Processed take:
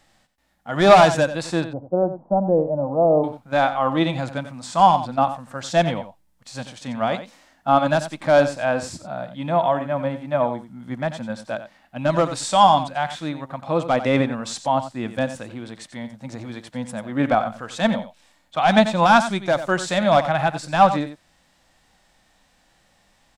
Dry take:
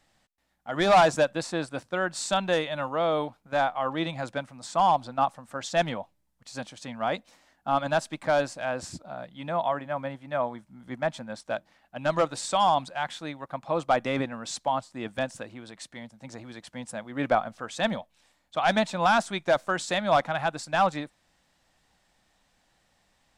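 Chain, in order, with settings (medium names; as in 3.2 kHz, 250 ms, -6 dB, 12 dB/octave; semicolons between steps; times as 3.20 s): 1.64–3.24 s: steep low-pass 820 Hz 36 dB/octave; harmonic-percussive split harmonic +9 dB; delay 90 ms -12 dB; trim +1.5 dB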